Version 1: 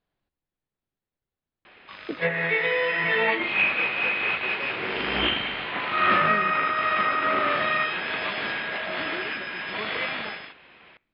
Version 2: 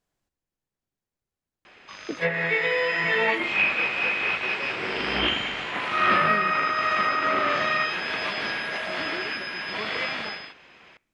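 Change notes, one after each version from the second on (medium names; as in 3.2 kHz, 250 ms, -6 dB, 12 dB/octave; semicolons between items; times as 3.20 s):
master: remove steep low-pass 4.4 kHz 48 dB/octave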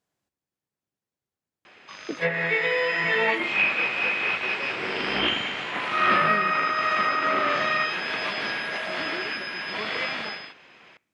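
master: add high-pass 100 Hz 12 dB/octave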